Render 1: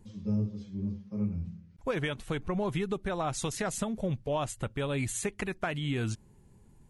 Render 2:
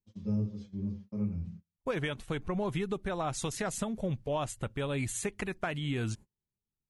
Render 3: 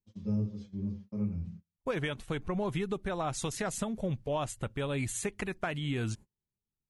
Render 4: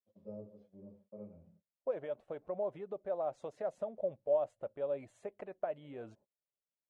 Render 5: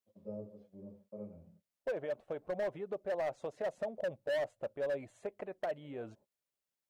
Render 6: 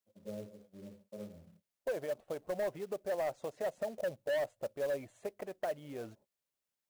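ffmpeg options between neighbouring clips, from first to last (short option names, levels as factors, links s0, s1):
-af "agate=range=0.02:threshold=0.00631:ratio=16:detection=peak,volume=0.841"
-af anull
-af "bandpass=f=590:t=q:w=5.9:csg=0,volume=1.78"
-af "volume=50.1,asoftclip=hard,volume=0.02,volume=1.41"
-af "acrusher=bits=4:mode=log:mix=0:aa=0.000001"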